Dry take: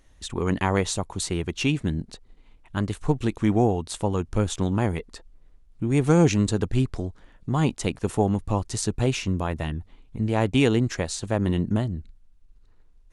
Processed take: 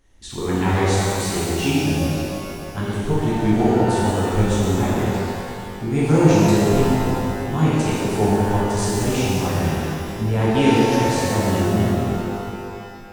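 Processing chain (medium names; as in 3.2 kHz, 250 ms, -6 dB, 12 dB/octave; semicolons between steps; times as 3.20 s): pitch-shifted reverb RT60 2.5 s, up +12 st, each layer -8 dB, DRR -8.5 dB; trim -5 dB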